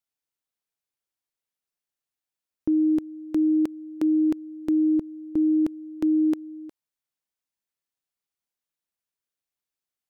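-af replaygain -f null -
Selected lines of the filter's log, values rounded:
track_gain = +5.5 dB
track_peak = 0.098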